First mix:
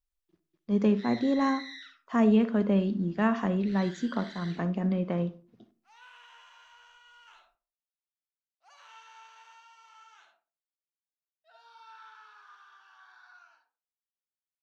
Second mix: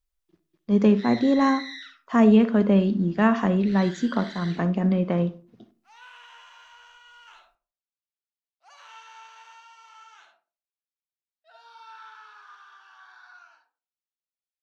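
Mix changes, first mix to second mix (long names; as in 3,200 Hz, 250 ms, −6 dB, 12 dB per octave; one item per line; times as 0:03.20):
speech +6.0 dB
background +5.5 dB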